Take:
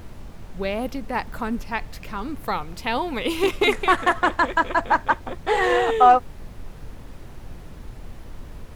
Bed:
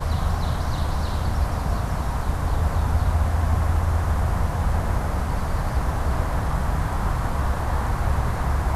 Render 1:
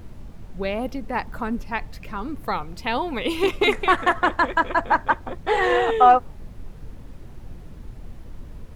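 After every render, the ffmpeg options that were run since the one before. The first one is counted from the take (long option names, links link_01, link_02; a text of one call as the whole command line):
ffmpeg -i in.wav -af "afftdn=noise_reduction=6:noise_floor=-41" out.wav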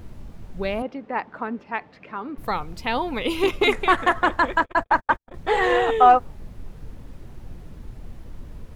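ffmpeg -i in.wav -filter_complex "[0:a]asettb=1/sr,asplit=3[link_01][link_02][link_03];[link_01]atrim=end=0.824[link_04];[link_02]atrim=start=0.82:end=2.38,asetpts=PTS-STARTPTS,afade=type=in:duration=0.004:curve=qsin,afade=type=out:start_time=1.556:duration=0.004:curve=qsin,highpass=260,lowpass=2500[link_05];[link_03]atrim=start=2.376[link_06];[link_04][link_05]acrossfade=duration=0.004:curve1=hsin:curve2=qsin[link_07];[link_07][link_06]acrossfade=duration=0.004:curve1=qsin:curve2=hsin,asettb=1/sr,asplit=3[link_08][link_09][link_10];[link_08]atrim=end=2.904[link_11];[link_09]atrim=start=2.9:end=3.63,asetpts=PTS-STARTPTS,afade=type=in:duration=0.004:curve=qsin,afade=type=out:start_time=0.726:duration=0.004:curve=qsin,bandreject=frequency=7900:width=12[link_12];[link_10]atrim=start=3.626[link_13];[link_11][link_12]acrossfade=duration=0.004:curve1=hsin:curve2=qsin[link_14];[link_14][link_13]acrossfade=duration=0.004:curve1=qsin:curve2=hsin,asettb=1/sr,asplit=3[link_15][link_16][link_17];[link_15]atrim=end=4.604[link_18];[link_16]atrim=start=4.6:end=5.34,asetpts=PTS-STARTPTS,afade=type=in:duration=0.004:curve=qsin,afade=type=out:start_time=0.736:duration=0.004:curve=qsin,agate=range=-55dB:threshold=-27dB:ratio=16:release=100:detection=peak[link_19];[link_17]atrim=start=5.336[link_20];[link_18][link_19]acrossfade=duration=0.004:curve1=hsin:curve2=qsin[link_21];[link_21][link_20]acrossfade=duration=0.004:curve1=qsin:curve2=hsin" out.wav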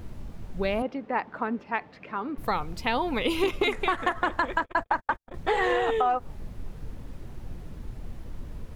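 ffmpeg -i in.wav -af "alimiter=limit=-9.5dB:level=0:latency=1:release=213,acompressor=threshold=-21dB:ratio=6" out.wav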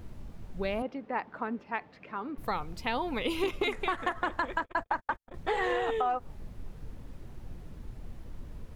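ffmpeg -i in.wav -af "volume=-5dB" out.wav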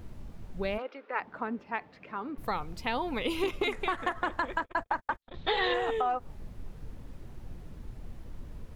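ffmpeg -i in.wav -filter_complex "[0:a]asplit=3[link_01][link_02][link_03];[link_01]afade=type=out:start_time=0.77:duration=0.02[link_04];[link_02]highpass=frequency=380:width=0.5412,highpass=frequency=380:width=1.3066,equalizer=frequency=740:width_type=q:width=4:gain=-7,equalizer=frequency=1400:width_type=q:width=4:gain=9,equalizer=frequency=2400:width_type=q:width=4:gain=5,equalizer=frequency=3700:width_type=q:width=4:gain=3,lowpass=frequency=5600:width=0.5412,lowpass=frequency=5600:width=1.3066,afade=type=in:start_time=0.77:duration=0.02,afade=type=out:start_time=1.19:duration=0.02[link_05];[link_03]afade=type=in:start_time=1.19:duration=0.02[link_06];[link_04][link_05][link_06]amix=inputs=3:normalize=0,asettb=1/sr,asplit=3[link_07][link_08][link_09];[link_07]atrim=end=5.224[link_10];[link_08]atrim=start=5.22:end=5.74,asetpts=PTS-STARTPTS,afade=type=in:duration=0.004:curve=qsin,afade=type=out:start_time=0.516:duration=0.004:curve=qsin,lowpass=frequency=3800:width_type=q:width=6.6[link_11];[link_09]atrim=start=5.736[link_12];[link_10][link_11]acrossfade=duration=0.004:curve1=hsin:curve2=qsin[link_13];[link_13][link_12]acrossfade=duration=0.004:curve1=qsin:curve2=hsin" out.wav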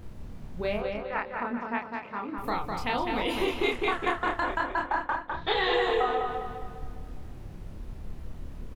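ffmpeg -i in.wav -filter_complex "[0:a]asplit=2[link_01][link_02];[link_02]adelay=29,volume=-2.5dB[link_03];[link_01][link_03]amix=inputs=2:normalize=0,asplit=2[link_04][link_05];[link_05]adelay=204,lowpass=frequency=5000:poles=1,volume=-4dB,asplit=2[link_06][link_07];[link_07]adelay=204,lowpass=frequency=5000:poles=1,volume=0.47,asplit=2[link_08][link_09];[link_09]adelay=204,lowpass=frequency=5000:poles=1,volume=0.47,asplit=2[link_10][link_11];[link_11]adelay=204,lowpass=frequency=5000:poles=1,volume=0.47,asplit=2[link_12][link_13];[link_13]adelay=204,lowpass=frequency=5000:poles=1,volume=0.47,asplit=2[link_14][link_15];[link_15]adelay=204,lowpass=frequency=5000:poles=1,volume=0.47[link_16];[link_04][link_06][link_08][link_10][link_12][link_14][link_16]amix=inputs=7:normalize=0" out.wav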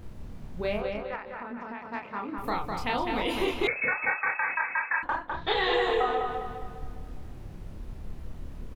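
ffmpeg -i in.wav -filter_complex "[0:a]asettb=1/sr,asplit=3[link_01][link_02][link_03];[link_01]atrim=end=1.154[link_04];[link_02]atrim=start=1.15:end=1.86,asetpts=PTS-STARTPTS,afade=type=in:duration=0.004:curve=qsin,afade=type=out:start_time=0.706:duration=0.004:curve=qsin,acompressor=threshold=-34dB:ratio=6:attack=3.2:release=140:knee=1:detection=peak[link_05];[link_03]atrim=start=1.856[link_06];[link_04][link_05]acrossfade=duration=0.004:curve1=hsin:curve2=qsin[link_07];[link_07][link_06]acrossfade=duration=0.004:curve1=qsin:curve2=hsin,asettb=1/sr,asplit=3[link_08][link_09][link_10];[link_08]atrim=end=3.674[link_11];[link_09]atrim=start=3.67:end=5.03,asetpts=PTS-STARTPTS,afade=type=in:duration=0.004:curve=qsin,afade=type=out:start_time=1.356:duration=0.004:curve=qsin,lowpass=frequency=2200:width_type=q:width=0.5098,lowpass=frequency=2200:width_type=q:width=0.6013,lowpass=frequency=2200:width_type=q:width=0.9,lowpass=frequency=2200:width_type=q:width=2.563,afreqshift=-2600[link_12];[link_10]atrim=start=5.026[link_13];[link_11][link_12]acrossfade=duration=0.004:curve1=hsin:curve2=qsin[link_14];[link_14][link_13]acrossfade=duration=0.004:curve1=qsin:curve2=hsin" out.wav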